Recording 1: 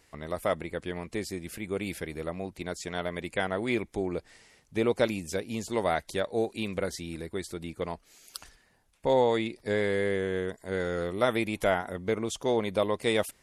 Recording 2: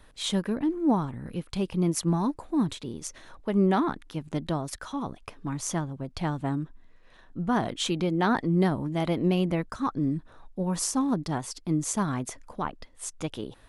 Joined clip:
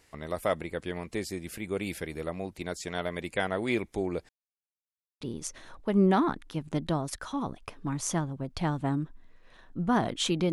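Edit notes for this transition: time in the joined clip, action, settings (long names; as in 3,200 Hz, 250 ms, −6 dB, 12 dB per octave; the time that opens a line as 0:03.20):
recording 1
0:04.29–0:05.21: silence
0:05.21: continue with recording 2 from 0:02.81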